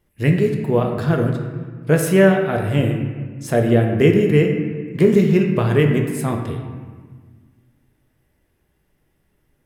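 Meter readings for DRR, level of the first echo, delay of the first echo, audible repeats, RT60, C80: 2.0 dB, no echo audible, no echo audible, no echo audible, 1.5 s, 6.5 dB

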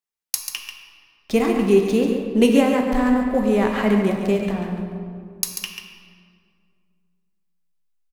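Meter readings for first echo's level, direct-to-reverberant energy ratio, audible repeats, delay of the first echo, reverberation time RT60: −7.5 dB, 1.0 dB, 1, 140 ms, 2.2 s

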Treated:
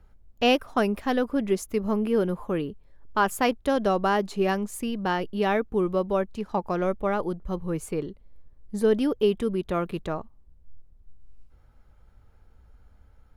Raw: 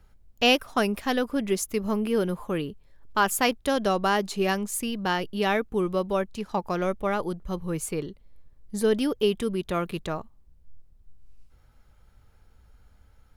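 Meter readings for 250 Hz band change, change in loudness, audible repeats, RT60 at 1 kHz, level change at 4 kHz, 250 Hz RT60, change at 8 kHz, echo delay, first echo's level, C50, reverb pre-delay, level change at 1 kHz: +1.0 dB, +0.5 dB, no echo audible, no reverb audible, −5.0 dB, no reverb audible, −7.5 dB, no echo audible, no echo audible, no reverb audible, no reverb audible, +0.5 dB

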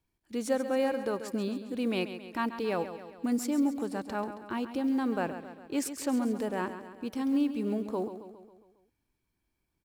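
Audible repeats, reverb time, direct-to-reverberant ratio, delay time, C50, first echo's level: 5, no reverb audible, no reverb audible, 136 ms, no reverb audible, −11.0 dB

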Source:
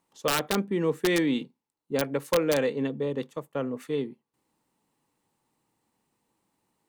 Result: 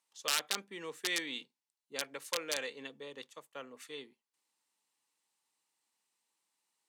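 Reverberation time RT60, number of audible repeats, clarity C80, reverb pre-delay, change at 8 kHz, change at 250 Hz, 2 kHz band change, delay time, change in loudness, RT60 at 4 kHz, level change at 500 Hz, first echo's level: no reverb audible, no echo audible, no reverb audible, no reverb audible, −1.0 dB, −22.0 dB, −5.5 dB, no echo audible, −9.5 dB, no reverb audible, −17.5 dB, no echo audible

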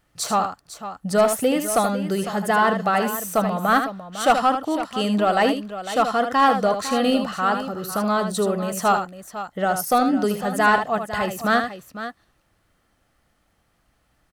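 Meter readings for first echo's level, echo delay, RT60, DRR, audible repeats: −8.0 dB, 77 ms, no reverb audible, no reverb audible, 2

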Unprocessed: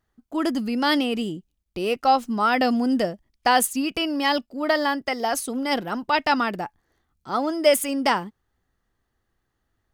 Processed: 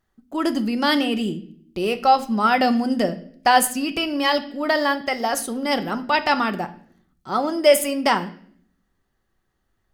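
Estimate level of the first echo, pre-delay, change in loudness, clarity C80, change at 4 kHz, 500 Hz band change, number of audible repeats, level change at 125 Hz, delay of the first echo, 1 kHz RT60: no echo audible, 5 ms, +2.0 dB, 19.0 dB, +2.0 dB, +2.5 dB, no echo audible, +4.0 dB, no echo audible, 0.50 s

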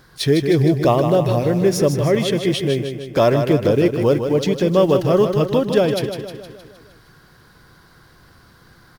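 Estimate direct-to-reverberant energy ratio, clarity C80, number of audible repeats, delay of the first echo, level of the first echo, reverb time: no reverb audible, no reverb audible, 6, 155 ms, −7.5 dB, no reverb audible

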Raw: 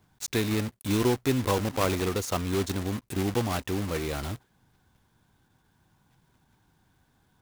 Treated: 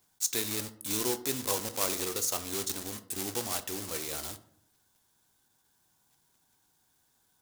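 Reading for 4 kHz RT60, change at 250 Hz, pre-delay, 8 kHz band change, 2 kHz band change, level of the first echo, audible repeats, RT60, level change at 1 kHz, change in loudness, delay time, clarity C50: 0.35 s, −11.0 dB, 13 ms, +6.0 dB, −6.0 dB, no echo audible, no echo audible, 0.65 s, −7.0 dB, −3.0 dB, no echo audible, 15.5 dB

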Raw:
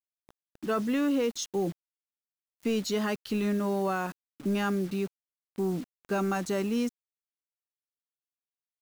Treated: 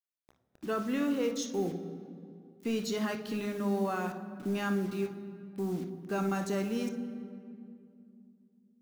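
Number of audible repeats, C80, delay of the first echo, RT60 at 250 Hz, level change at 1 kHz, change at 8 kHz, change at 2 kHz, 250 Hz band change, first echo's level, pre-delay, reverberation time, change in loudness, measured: no echo audible, 11.5 dB, no echo audible, 3.6 s, −3.5 dB, −4.0 dB, −3.0 dB, −3.0 dB, no echo audible, 28 ms, 2.5 s, −3.5 dB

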